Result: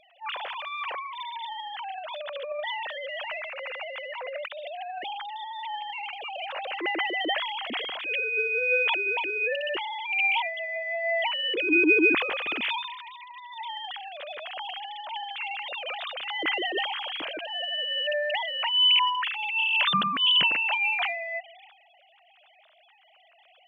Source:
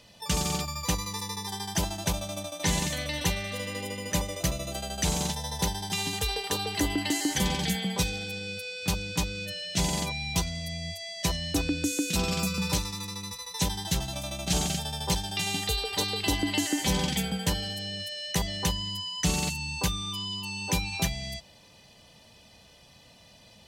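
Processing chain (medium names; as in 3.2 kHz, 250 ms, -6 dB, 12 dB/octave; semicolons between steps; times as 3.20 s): formants replaced by sine waves; transient shaper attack -12 dB, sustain +9 dB; trim +1.5 dB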